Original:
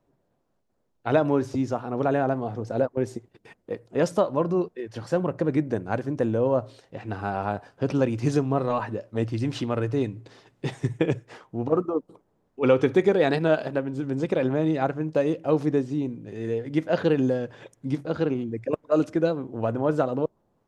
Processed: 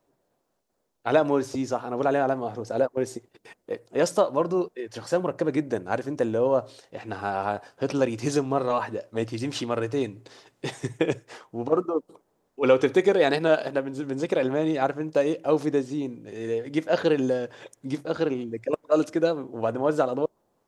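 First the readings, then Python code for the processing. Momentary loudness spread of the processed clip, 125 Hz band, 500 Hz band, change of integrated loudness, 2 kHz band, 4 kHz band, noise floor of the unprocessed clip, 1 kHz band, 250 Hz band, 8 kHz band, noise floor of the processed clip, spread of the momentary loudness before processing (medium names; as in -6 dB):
11 LU, -6.5 dB, +1.0 dB, 0.0 dB, +2.0 dB, +4.0 dB, -71 dBFS, +1.5 dB, -2.0 dB, no reading, -73 dBFS, 10 LU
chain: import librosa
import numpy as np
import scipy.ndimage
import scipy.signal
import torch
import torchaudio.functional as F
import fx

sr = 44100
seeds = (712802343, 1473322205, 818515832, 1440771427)

y = fx.bass_treble(x, sr, bass_db=-9, treble_db=6)
y = y * 10.0 ** (1.5 / 20.0)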